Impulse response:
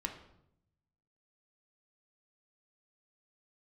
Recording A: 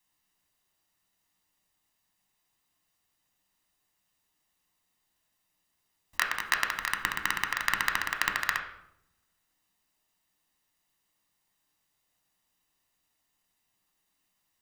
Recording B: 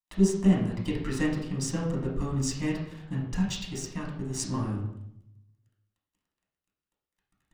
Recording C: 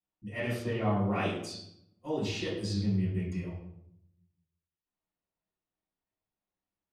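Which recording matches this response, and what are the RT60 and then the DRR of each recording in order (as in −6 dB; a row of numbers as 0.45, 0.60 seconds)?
A; 0.75, 0.75, 0.75 seconds; 3.0, −4.5, −14.5 decibels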